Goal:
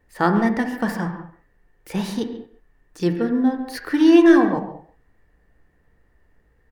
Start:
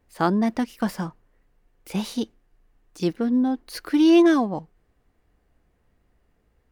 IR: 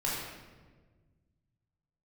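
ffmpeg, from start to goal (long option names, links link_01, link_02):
-filter_complex "[0:a]equalizer=frequency=1800:width=7.1:gain=13,asplit=2[link_01][link_02];[link_02]adelay=140,highpass=300,lowpass=3400,asoftclip=type=hard:threshold=-15dB,volume=-15dB[link_03];[link_01][link_03]amix=inputs=2:normalize=0,asplit=2[link_04][link_05];[1:a]atrim=start_sample=2205,afade=type=out:start_time=0.28:duration=0.01,atrim=end_sample=12789,lowpass=2200[link_06];[link_05][link_06]afir=irnorm=-1:irlink=0,volume=-8.5dB[link_07];[link_04][link_07]amix=inputs=2:normalize=0"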